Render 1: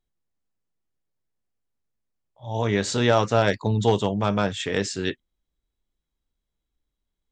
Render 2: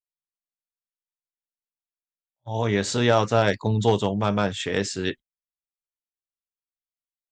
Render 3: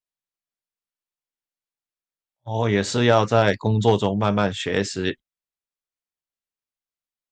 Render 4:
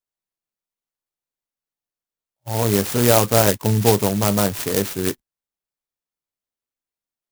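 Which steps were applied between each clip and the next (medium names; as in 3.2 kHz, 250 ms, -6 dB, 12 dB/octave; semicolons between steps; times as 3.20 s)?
gate -35 dBFS, range -35 dB
treble shelf 7.7 kHz -7 dB; trim +2.5 dB
sampling jitter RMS 0.13 ms; trim +2 dB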